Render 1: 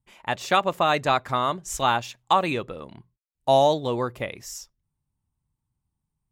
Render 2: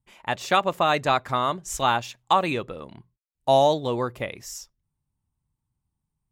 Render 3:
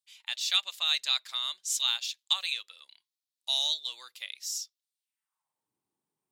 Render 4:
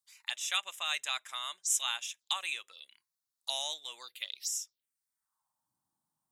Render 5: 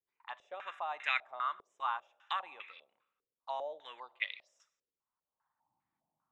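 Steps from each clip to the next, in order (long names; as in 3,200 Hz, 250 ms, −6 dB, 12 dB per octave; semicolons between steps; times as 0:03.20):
no processing that can be heard
high-pass filter sweep 3,900 Hz → 370 Hz, 0:04.97–0:05.70
phaser swept by the level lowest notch 420 Hz, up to 4,400 Hz, full sweep at −33.5 dBFS; level +3.5 dB
convolution reverb RT60 1.1 s, pre-delay 21 ms, DRR 18 dB; low-pass on a step sequencer 5 Hz 430–2,100 Hz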